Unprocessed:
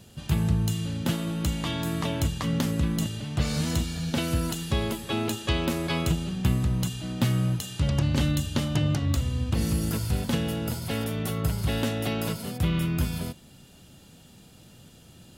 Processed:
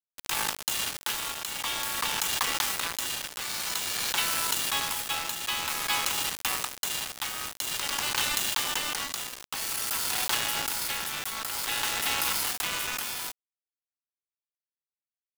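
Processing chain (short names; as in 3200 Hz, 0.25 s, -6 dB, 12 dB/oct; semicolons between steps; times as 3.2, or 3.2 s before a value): steep high-pass 770 Hz 96 dB/oct; in parallel at +2 dB: negative-ratio compressor -43 dBFS, ratio -1; on the sum: bit-crush 5-bit; tremolo triangle 0.51 Hz, depth 55%; gain +5 dB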